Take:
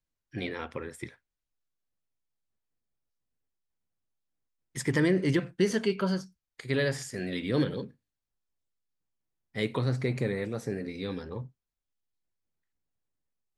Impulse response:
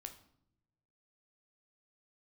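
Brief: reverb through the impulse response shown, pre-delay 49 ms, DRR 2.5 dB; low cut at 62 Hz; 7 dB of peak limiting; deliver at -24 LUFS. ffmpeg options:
-filter_complex "[0:a]highpass=62,alimiter=limit=-20dB:level=0:latency=1,asplit=2[a][b];[1:a]atrim=start_sample=2205,adelay=49[c];[b][c]afir=irnorm=-1:irlink=0,volume=2.5dB[d];[a][d]amix=inputs=2:normalize=0,volume=7dB"

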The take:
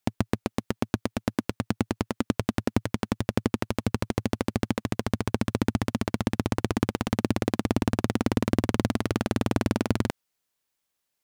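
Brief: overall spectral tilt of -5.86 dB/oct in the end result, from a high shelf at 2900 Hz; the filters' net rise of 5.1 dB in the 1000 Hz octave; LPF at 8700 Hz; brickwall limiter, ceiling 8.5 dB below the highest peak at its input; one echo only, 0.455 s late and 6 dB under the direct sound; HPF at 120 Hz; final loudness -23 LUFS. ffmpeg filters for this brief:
-af "highpass=120,lowpass=8.7k,equalizer=f=1k:t=o:g=7,highshelf=f=2.9k:g=-4.5,alimiter=limit=-14.5dB:level=0:latency=1,aecho=1:1:455:0.501,volume=10.5dB"

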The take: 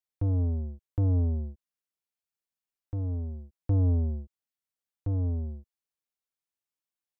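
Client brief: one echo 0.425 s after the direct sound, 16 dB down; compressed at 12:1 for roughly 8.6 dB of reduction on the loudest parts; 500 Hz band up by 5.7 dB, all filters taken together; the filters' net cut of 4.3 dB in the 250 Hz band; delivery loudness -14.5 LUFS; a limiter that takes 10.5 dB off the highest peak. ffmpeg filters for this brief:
-af "equalizer=f=250:t=o:g=-7,equalizer=f=500:t=o:g=8.5,acompressor=threshold=-31dB:ratio=12,alimiter=level_in=8dB:limit=-24dB:level=0:latency=1,volume=-8dB,aecho=1:1:425:0.158,volume=25dB"

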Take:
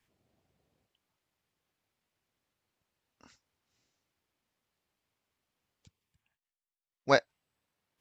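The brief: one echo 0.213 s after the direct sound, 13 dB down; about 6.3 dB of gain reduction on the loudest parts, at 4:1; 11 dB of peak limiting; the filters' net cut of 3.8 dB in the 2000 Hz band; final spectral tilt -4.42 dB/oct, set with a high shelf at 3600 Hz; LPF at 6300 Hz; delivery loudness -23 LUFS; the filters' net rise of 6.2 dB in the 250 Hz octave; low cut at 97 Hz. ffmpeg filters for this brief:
-af "highpass=97,lowpass=6.3k,equalizer=f=250:t=o:g=7,equalizer=f=2k:t=o:g=-4.5,highshelf=f=3.6k:g=-4,acompressor=threshold=-24dB:ratio=4,alimiter=level_in=0.5dB:limit=-24dB:level=0:latency=1,volume=-0.5dB,aecho=1:1:213:0.224,volume=21dB"

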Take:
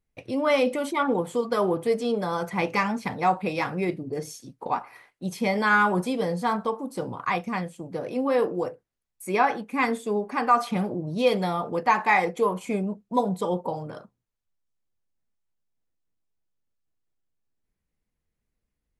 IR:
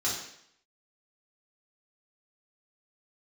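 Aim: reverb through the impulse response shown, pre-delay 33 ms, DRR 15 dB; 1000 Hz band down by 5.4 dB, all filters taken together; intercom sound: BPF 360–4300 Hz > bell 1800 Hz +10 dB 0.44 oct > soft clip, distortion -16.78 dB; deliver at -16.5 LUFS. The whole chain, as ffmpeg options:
-filter_complex "[0:a]equalizer=f=1k:t=o:g=-8,asplit=2[a][b];[1:a]atrim=start_sample=2205,adelay=33[c];[b][c]afir=irnorm=-1:irlink=0,volume=-22.5dB[d];[a][d]amix=inputs=2:normalize=0,highpass=360,lowpass=4.3k,equalizer=f=1.8k:t=o:w=0.44:g=10,asoftclip=threshold=-15.5dB,volume=12.5dB"

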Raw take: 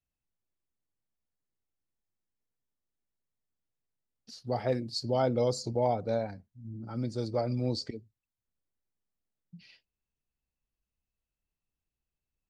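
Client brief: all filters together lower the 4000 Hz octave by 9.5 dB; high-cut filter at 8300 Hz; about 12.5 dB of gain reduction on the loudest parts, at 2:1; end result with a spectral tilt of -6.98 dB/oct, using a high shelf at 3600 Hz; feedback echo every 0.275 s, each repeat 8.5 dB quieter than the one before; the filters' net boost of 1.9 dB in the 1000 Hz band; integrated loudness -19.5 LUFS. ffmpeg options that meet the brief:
-af "lowpass=8.3k,equalizer=f=1k:t=o:g=3.5,highshelf=f=3.6k:g=-5.5,equalizer=f=4k:t=o:g=-7,acompressor=threshold=-46dB:ratio=2,aecho=1:1:275|550|825|1100:0.376|0.143|0.0543|0.0206,volume=23dB"

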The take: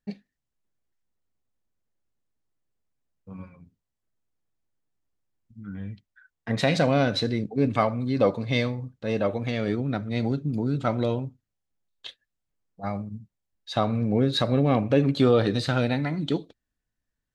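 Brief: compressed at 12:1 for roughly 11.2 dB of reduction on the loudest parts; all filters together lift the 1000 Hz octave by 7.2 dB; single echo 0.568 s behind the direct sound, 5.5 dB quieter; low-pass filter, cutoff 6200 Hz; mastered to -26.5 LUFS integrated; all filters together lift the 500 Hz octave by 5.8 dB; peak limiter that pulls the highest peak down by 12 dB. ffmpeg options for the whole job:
-af "lowpass=6.2k,equalizer=f=500:t=o:g=4.5,equalizer=f=1k:t=o:g=8.5,acompressor=threshold=-21dB:ratio=12,alimiter=limit=-18.5dB:level=0:latency=1,aecho=1:1:568:0.531,volume=3dB"

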